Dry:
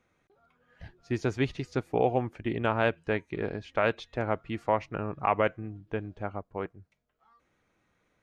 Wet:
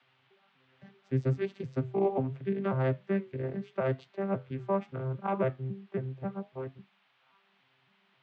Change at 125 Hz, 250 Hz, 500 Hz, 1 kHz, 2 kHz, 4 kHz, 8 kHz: +2.5 dB, -0.5 dB, -2.5 dB, -7.0 dB, -10.5 dB, under -10 dB, no reading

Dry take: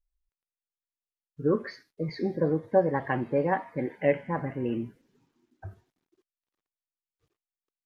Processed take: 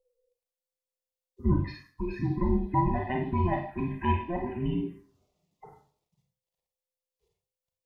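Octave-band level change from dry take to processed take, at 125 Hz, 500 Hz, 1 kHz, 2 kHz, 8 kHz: +5.0 dB, -8.0 dB, +2.0 dB, -5.0 dB, no reading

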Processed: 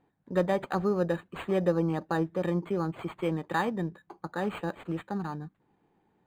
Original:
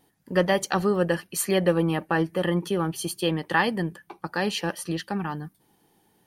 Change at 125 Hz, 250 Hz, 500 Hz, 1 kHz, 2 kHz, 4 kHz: -4.0 dB, -4.0 dB, -4.5 dB, -5.0 dB, -9.5 dB, -14.5 dB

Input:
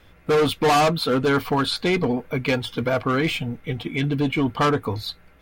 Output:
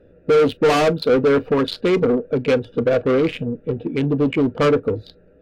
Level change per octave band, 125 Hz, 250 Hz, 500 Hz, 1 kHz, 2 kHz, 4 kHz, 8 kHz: 0.0 dB, +3.5 dB, +6.5 dB, -2.5 dB, -1.0 dB, -3.5 dB, no reading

